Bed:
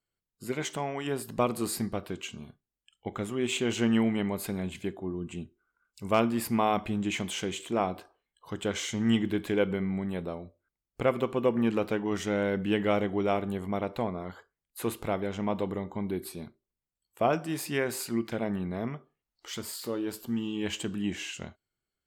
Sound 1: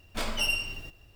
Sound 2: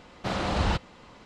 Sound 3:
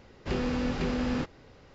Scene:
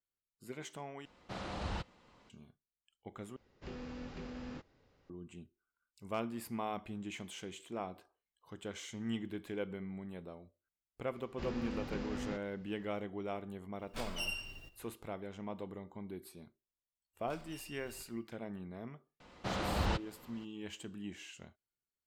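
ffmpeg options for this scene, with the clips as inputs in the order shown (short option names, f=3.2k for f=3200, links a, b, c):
-filter_complex "[2:a]asplit=2[a][b];[3:a]asplit=2[c][d];[1:a]asplit=2[e][f];[0:a]volume=-13dB[g];[f]acompressor=threshold=-43dB:ratio=12:attack=57:release=41:knee=1:detection=rms[h];[g]asplit=3[i][j][k];[i]atrim=end=1.054[l];[a]atrim=end=1.25,asetpts=PTS-STARTPTS,volume=-13.5dB[m];[j]atrim=start=2.296:end=3.364[n];[c]atrim=end=1.74,asetpts=PTS-STARTPTS,volume=-16dB[o];[k]atrim=start=5.096[p];[d]atrim=end=1.74,asetpts=PTS-STARTPTS,volume=-11.5dB,afade=t=in:d=0.004:c=hsin,afade=t=out:st=1.736:d=0.004:c=hsin,adelay=11120[q];[e]atrim=end=1.15,asetpts=PTS-STARTPTS,volume=-11dB,afade=t=in:d=0.004:c=hsin,afade=t=out:st=1.146:d=0.004:c=hsin,adelay=13790[r];[h]atrim=end=1.15,asetpts=PTS-STARTPTS,volume=-13dB,afade=t=in:d=0.1,afade=t=out:st=1.05:d=0.1,adelay=17130[s];[b]atrim=end=1.25,asetpts=PTS-STARTPTS,volume=-7.5dB,afade=t=in:d=0.004:c=hsin,afade=t=out:st=1.246:d=0.004:c=hsin,adelay=19200[t];[l][m]acrossfade=d=0.004:c1=hsin:c2=hsin[u];[u][n]acrossfade=d=0.004:c1=hsin:c2=hsin[v];[v][o]acrossfade=d=0.004:c1=hsin:c2=hsin[w];[w][p]acrossfade=d=0.004:c1=hsin:c2=hsin[x];[x][q][r][s][t]amix=inputs=5:normalize=0"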